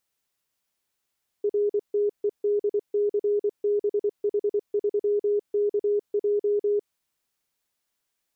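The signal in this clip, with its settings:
Morse code "RTEDCBH3KJ" 24 words per minute 412 Hz −20 dBFS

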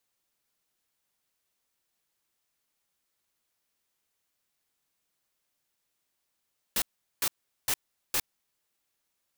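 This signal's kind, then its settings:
noise bursts white, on 0.06 s, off 0.40 s, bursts 4, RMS −27 dBFS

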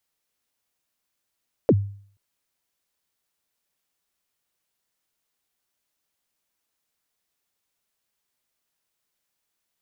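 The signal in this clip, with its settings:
synth kick length 0.48 s, from 580 Hz, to 100 Hz, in 50 ms, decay 0.52 s, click off, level −10 dB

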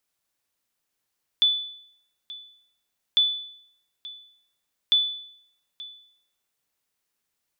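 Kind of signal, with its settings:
ping with an echo 3,480 Hz, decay 0.68 s, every 1.75 s, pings 3, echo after 0.88 s, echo −19.5 dB −13 dBFS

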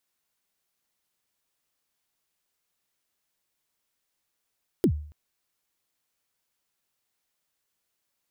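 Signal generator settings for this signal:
synth kick length 0.28 s, from 420 Hz, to 75 Hz, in 78 ms, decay 0.51 s, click on, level −14.5 dB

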